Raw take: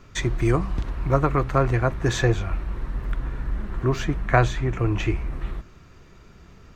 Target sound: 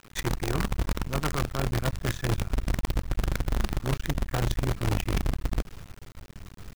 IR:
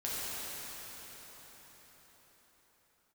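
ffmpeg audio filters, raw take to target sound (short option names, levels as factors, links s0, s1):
-af "asubboost=boost=2.5:cutoff=250,areverse,acompressor=threshold=0.0631:ratio=16,areverse,acrusher=bits=5:dc=4:mix=0:aa=0.000001"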